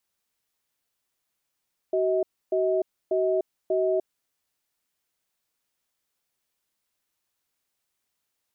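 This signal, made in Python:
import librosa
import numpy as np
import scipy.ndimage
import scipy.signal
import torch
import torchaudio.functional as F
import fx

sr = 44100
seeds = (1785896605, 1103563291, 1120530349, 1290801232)

y = fx.cadence(sr, length_s=2.32, low_hz=377.0, high_hz=637.0, on_s=0.3, off_s=0.29, level_db=-23.5)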